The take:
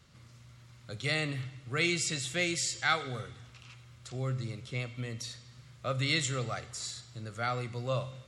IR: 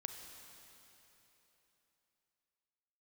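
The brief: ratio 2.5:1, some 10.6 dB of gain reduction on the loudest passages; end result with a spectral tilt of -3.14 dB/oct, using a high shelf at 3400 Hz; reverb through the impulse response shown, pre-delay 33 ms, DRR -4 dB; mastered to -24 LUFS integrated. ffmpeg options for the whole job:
-filter_complex "[0:a]highshelf=f=3.4k:g=5.5,acompressor=threshold=-39dB:ratio=2.5,asplit=2[a][b];[1:a]atrim=start_sample=2205,adelay=33[c];[b][c]afir=irnorm=-1:irlink=0,volume=6.5dB[d];[a][d]amix=inputs=2:normalize=0,volume=10dB"

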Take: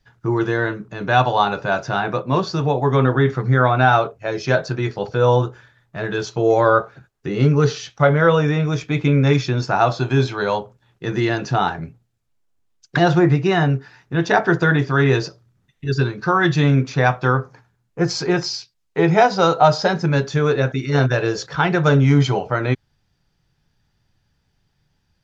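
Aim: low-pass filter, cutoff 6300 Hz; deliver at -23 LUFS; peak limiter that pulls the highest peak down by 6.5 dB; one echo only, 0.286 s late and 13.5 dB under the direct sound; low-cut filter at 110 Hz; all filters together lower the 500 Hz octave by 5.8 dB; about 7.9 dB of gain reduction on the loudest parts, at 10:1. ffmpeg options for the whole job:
-af "highpass=110,lowpass=6.3k,equalizer=f=500:t=o:g=-7.5,acompressor=threshold=-20dB:ratio=10,alimiter=limit=-16dB:level=0:latency=1,aecho=1:1:286:0.211,volume=4dB"

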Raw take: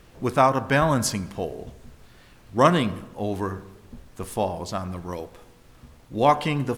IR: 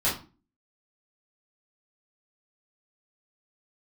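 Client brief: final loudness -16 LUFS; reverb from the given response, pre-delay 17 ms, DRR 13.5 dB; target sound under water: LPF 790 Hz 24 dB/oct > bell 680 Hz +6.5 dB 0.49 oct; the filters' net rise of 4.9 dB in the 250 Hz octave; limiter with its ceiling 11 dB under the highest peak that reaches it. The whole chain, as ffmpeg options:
-filter_complex "[0:a]equalizer=f=250:t=o:g=6,alimiter=limit=-14dB:level=0:latency=1,asplit=2[a][b];[1:a]atrim=start_sample=2205,adelay=17[c];[b][c]afir=irnorm=-1:irlink=0,volume=-24.5dB[d];[a][d]amix=inputs=2:normalize=0,lowpass=f=790:w=0.5412,lowpass=f=790:w=1.3066,equalizer=f=680:t=o:w=0.49:g=6.5,volume=10dB"

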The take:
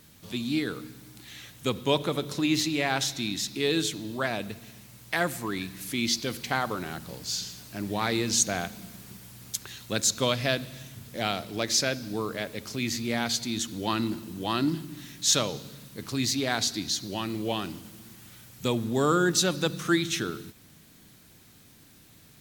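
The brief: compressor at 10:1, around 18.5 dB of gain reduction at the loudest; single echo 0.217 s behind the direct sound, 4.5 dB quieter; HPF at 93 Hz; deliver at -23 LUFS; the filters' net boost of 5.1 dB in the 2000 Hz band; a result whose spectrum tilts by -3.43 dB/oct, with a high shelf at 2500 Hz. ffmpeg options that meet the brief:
-af "highpass=93,equalizer=f=2k:t=o:g=9,highshelf=f=2.5k:g=-5,acompressor=threshold=-37dB:ratio=10,aecho=1:1:217:0.596,volume=17dB"

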